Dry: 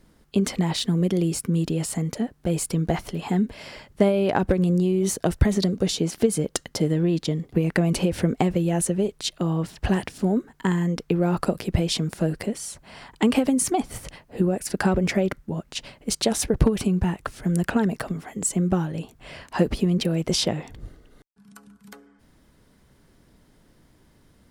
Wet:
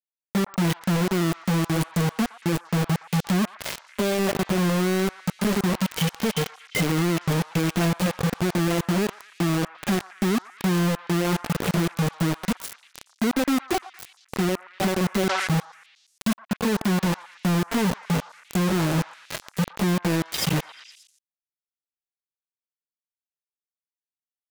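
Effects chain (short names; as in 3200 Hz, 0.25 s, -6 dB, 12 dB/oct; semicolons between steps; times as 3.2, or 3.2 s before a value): median-filter separation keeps harmonic; HPF 91 Hz 12 dB/oct; 5.65–7.85 spectral gain 690–3500 Hz +11 dB; limiter -20 dBFS, peak gain reduction 11.5 dB; compressor 12:1, threshold -35 dBFS, peak gain reduction 12.5 dB; companded quantiser 2-bit; delay with a stepping band-pass 0.116 s, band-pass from 1100 Hz, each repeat 0.7 oct, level -11.5 dB; 15.08–15.58 sustainer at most 28 dB/s; gain +6.5 dB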